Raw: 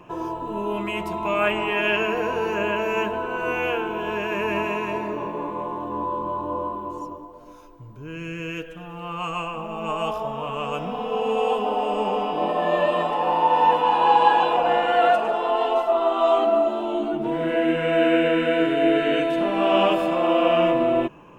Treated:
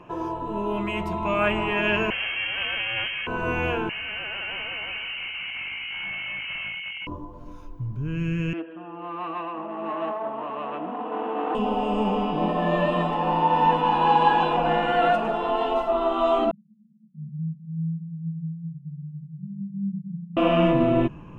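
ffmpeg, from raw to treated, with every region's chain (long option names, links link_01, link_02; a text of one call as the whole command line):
ffmpeg -i in.wav -filter_complex "[0:a]asettb=1/sr,asplit=3[link_01][link_02][link_03];[link_01]atrim=end=2.104[link_04];[link_02]atrim=start=2.1:end=3.27,asetpts=PTS-STARTPTS,afade=type=in:duration=0.004:curve=qsin,afade=type=out:start_time=1.166:duration=0.004:curve=qsin,aeval=exprs='clip(val(0),-1,0.0237)':channel_layout=same,lowpass=frequency=2700:width_type=q:width=0.5098,lowpass=frequency=2700:width_type=q:width=0.6013,lowpass=frequency=2700:width_type=q:width=0.9,lowpass=frequency=2700:width_type=q:width=2.563,afreqshift=-3200[link_05];[link_03]atrim=start=3.266[link_06];[link_04][link_05]acrossfade=duration=0.004:curve1=hsin:curve2=qsin[link_07];[link_07][link_06]acrossfade=duration=0.004:curve1=qsin:curve2=hsin,asettb=1/sr,asplit=3[link_08][link_09][link_10];[link_08]atrim=end=3.894[link_11];[link_09]atrim=start=3.89:end=7.07,asetpts=PTS-STARTPTS,afade=type=in:duration=0.004:curve=qsin,afade=type=out:start_time=3.176:duration=0.004:curve=qsin,volume=28.5dB,asoftclip=hard,volume=-28.5dB,lowpass=frequency=2700:width_type=q:width=0.5098,lowpass=frequency=2700:width_type=q:width=0.6013,lowpass=frequency=2700:width_type=q:width=0.9,lowpass=frequency=2700:width_type=q:width=2.563,afreqshift=-3200[link_12];[link_10]atrim=start=7.066[link_13];[link_11][link_12]acrossfade=duration=0.004:curve1=hsin:curve2=qsin[link_14];[link_14][link_13]acrossfade=duration=0.004:curve1=qsin:curve2=hsin,asettb=1/sr,asplit=3[link_15][link_16][link_17];[link_15]atrim=end=8.534[link_18];[link_16]atrim=start=8.53:end=11.55,asetpts=PTS-STARTPTS,afade=type=in:duration=0.004:curve=qsin,afade=type=out:start_time=3.016:duration=0.004:curve=qsin,aeval=exprs='clip(val(0),-1,0.0299)':channel_layout=same,highpass=frequency=300:width=0.5412,highpass=frequency=300:width=1.3066,equalizer=frequency=320:width_type=q:width=4:gain=7,equalizer=frequency=460:width_type=q:width=4:gain=-4,equalizer=frequency=660:width_type=q:width=4:gain=5,equalizer=frequency=1000:width_type=q:width=4:gain=3,equalizer=frequency=1600:width_type=q:width=4:gain=-4,equalizer=frequency=2200:width_type=q:width=4:gain=-7,lowpass=frequency=2500:width=0.5412,lowpass=frequency=2500:width=1.3066[link_19];[link_17]atrim=start=11.546[link_20];[link_18][link_19]acrossfade=duration=0.004:curve1=hsin:curve2=qsin[link_21];[link_21][link_20]acrossfade=duration=0.004:curve1=qsin:curve2=hsin,asettb=1/sr,asplit=3[link_22][link_23][link_24];[link_22]atrim=end=16.514[link_25];[link_23]atrim=start=16.51:end=20.37,asetpts=PTS-STARTPTS,afade=type=in:duration=0.004:curve=qsin,afade=type=out:start_time=3.856:duration=0.004:curve=qsin,flanger=delay=4.4:depth=9.7:regen=-39:speed=1.2:shape=sinusoidal,asuperpass=centerf=170:order=12:qfactor=3[link_26];[link_24]atrim=start=20.366[link_27];[link_25][link_26]acrossfade=duration=0.004:curve1=hsin:curve2=qsin[link_28];[link_28][link_27]acrossfade=duration=0.004:curve1=qsin:curve2=hsin,lowpass=frequency=4000:poles=1,asubboost=boost=5.5:cutoff=200" out.wav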